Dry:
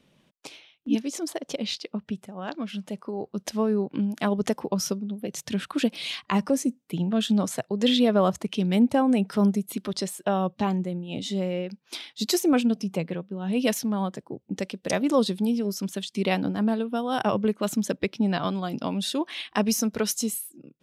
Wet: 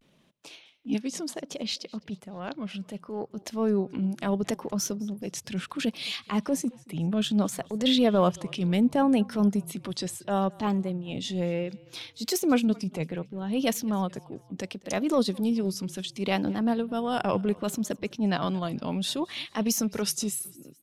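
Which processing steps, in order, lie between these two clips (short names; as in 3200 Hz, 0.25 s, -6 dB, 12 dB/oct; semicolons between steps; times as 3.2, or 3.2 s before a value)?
transient shaper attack -8 dB, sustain -2 dB; frequency-shifting echo 0.217 s, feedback 48%, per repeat -31 Hz, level -24 dB; vibrato 0.68 Hz 89 cents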